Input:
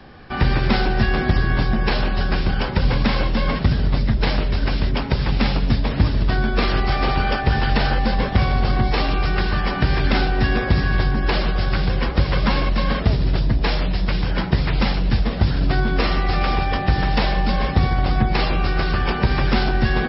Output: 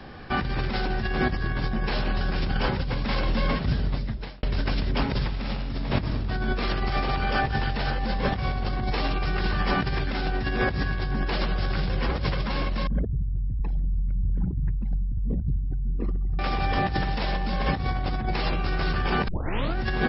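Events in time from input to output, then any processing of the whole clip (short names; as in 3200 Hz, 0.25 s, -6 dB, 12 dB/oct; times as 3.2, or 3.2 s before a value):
2.98–4.43 fade out
5.21–6.06 reverb throw, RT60 1.8 s, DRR 2 dB
12.87–16.39 formant sharpening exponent 3
19.28 tape start 0.48 s
whole clip: negative-ratio compressor -22 dBFS, ratio -1; gain -3 dB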